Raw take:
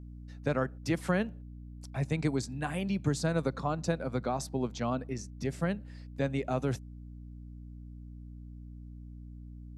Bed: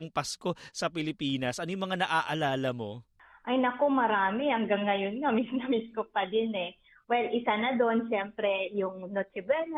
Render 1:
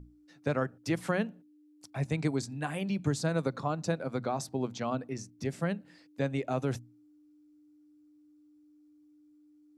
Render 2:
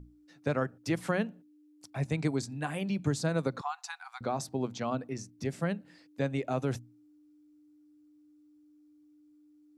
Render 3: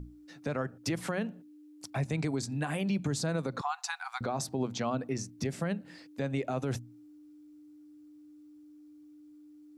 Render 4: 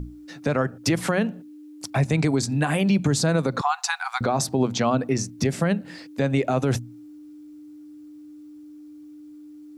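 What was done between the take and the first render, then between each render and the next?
mains-hum notches 60/120/180/240 Hz
0:03.61–0:04.21: linear-phase brick-wall high-pass 710 Hz
in parallel at +2 dB: downward compressor, threshold −38 dBFS, peak gain reduction 14 dB; on the sum: brickwall limiter −22.5 dBFS, peak gain reduction 8.5 dB
level +10.5 dB

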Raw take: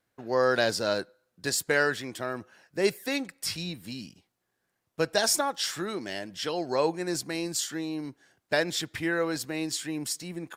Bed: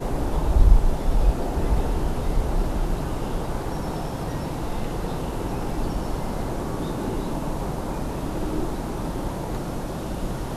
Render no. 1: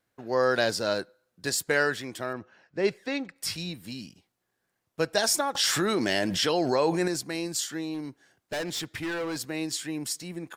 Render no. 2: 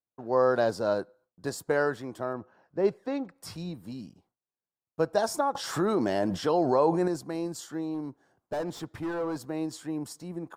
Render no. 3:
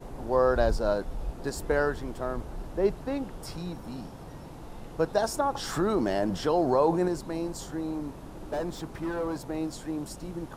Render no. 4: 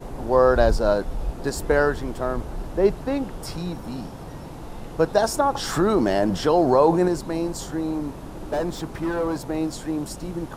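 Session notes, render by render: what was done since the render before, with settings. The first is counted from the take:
0:02.33–0:03.36: high-frequency loss of the air 140 metres; 0:05.55–0:07.08: envelope flattener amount 70%; 0:07.94–0:09.39: gain into a clipping stage and back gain 28.5 dB
noise gate with hold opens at −60 dBFS; high shelf with overshoot 1,500 Hz −11.5 dB, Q 1.5
mix in bed −15 dB
level +6.5 dB

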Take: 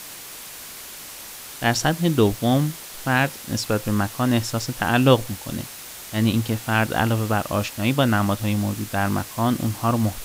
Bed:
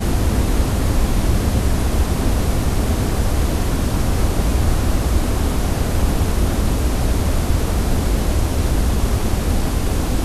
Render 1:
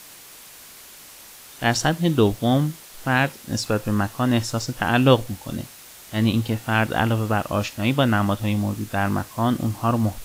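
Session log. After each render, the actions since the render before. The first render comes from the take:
noise reduction from a noise print 6 dB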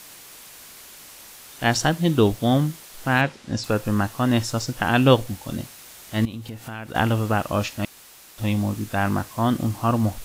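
0:03.21–0:03.64: high-frequency loss of the air 84 metres
0:06.25–0:06.95: downward compressor 4 to 1, threshold −32 dBFS
0:07.85–0:08.38: fill with room tone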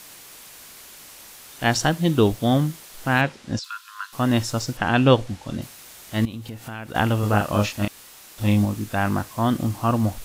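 0:03.59–0:04.13: Chebyshev high-pass with heavy ripple 990 Hz, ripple 9 dB
0:04.77–0:05.62: high-frequency loss of the air 57 metres
0:07.20–0:08.65: double-tracking delay 29 ms −3 dB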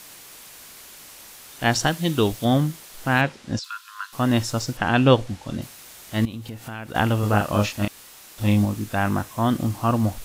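0:01.87–0:02.45: tilt shelving filter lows −3.5 dB, about 1,300 Hz
0:08.99–0:09.50: notch filter 4,600 Hz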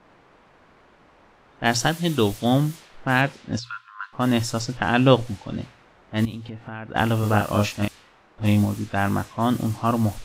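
low-pass that shuts in the quiet parts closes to 1,000 Hz, open at −18.5 dBFS
mains-hum notches 60/120 Hz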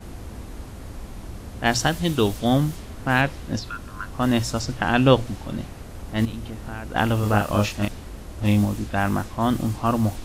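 mix in bed −19.5 dB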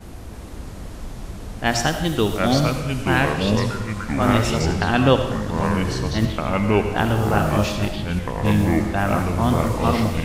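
comb and all-pass reverb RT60 0.83 s, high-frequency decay 0.75×, pre-delay 35 ms, DRR 7 dB
delay with pitch and tempo change per echo 313 ms, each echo −4 semitones, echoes 3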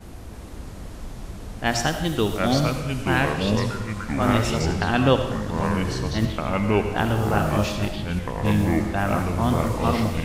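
level −2.5 dB

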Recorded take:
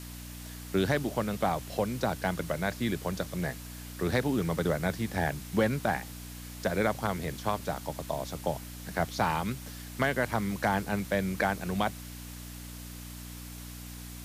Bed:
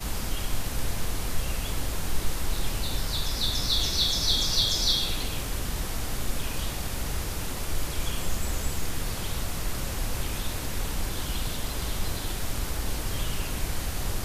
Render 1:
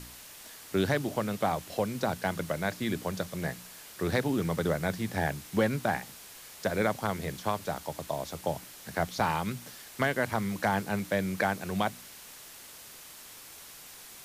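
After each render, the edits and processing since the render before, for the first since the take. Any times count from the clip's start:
hum removal 60 Hz, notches 5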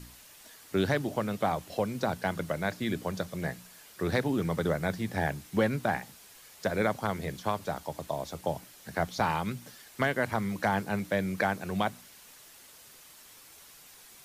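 broadband denoise 6 dB, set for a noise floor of −49 dBFS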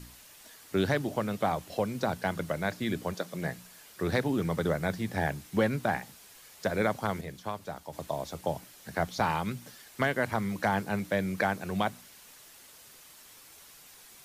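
0:03.13–0:03.53: high-pass filter 290 Hz → 73 Hz 24 dB per octave
0:07.21–0:07.93: clip gain −5.5 dB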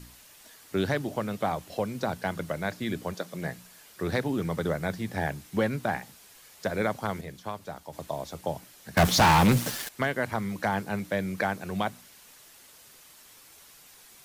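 0:08.97–0:09.89: leveller curve on the samples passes 5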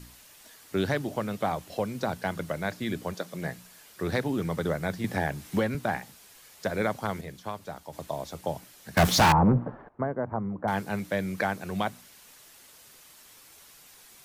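0:05.04–0:05.75: multiband upward and downward compressor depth 70%
0:09.32–0:10.68: low-pass filter 1,100 Hz 24 dB per octave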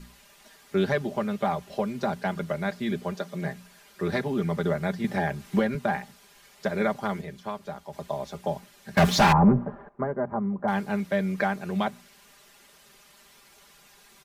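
high-shelf EQ 5,800 Hz −10 dB
comb filter 5 ms, depth 77%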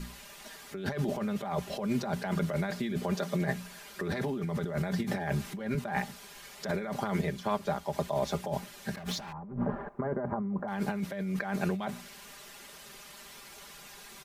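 compressor whose output falls as the input rises −33 dBFS, ratio −1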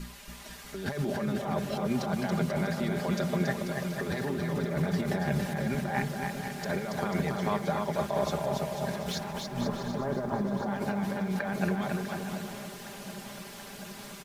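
bouncing-ball delay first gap 280 ms, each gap 0.75×, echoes 5
feedback echo at a low word length 731 ms, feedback 80%, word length 9 bits, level −14.5 dB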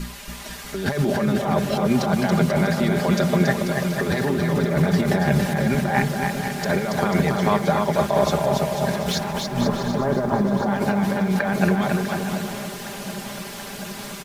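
level +10 dB

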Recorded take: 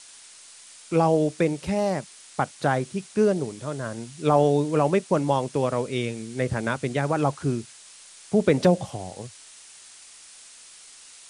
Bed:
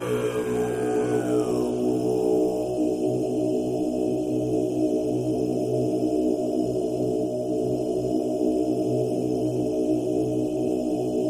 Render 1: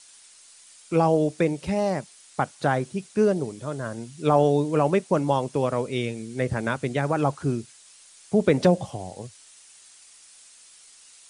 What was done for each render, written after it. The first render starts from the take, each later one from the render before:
broadband denoise 6 dB, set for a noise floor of −48 dBFS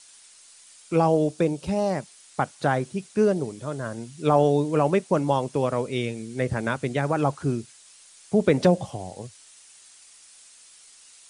0:01.31–0:01.90: parametric band 2,000 Hz −9 dB 0.47 octaves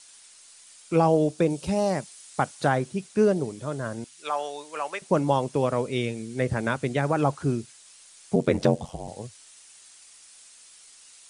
0:01.50–0:02.69: high-shelf EQ 4,600 Hz +5.5 dB
0:04.04–0:05.02: high-pass filter 1,100 Hz
0:08.35–0:09.08: ring modulation 45 Hz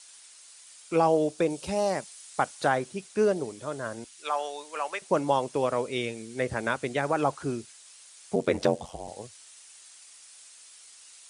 high-pass filter 46 Hz
parametric band 140 Hz −10 dB 1.9 octaves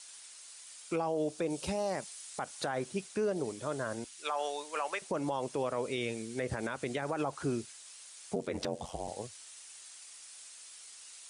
downward compressor, threshold −25 dBFS, peak gain reduction 8 dB
brickwall limiter −24 dBFS, peak gain reduction 11.5 dB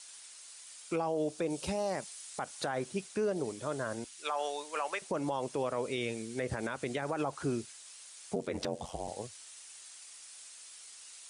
no processing that can be heard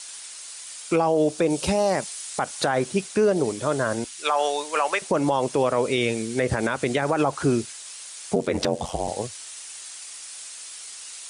level +12 dB

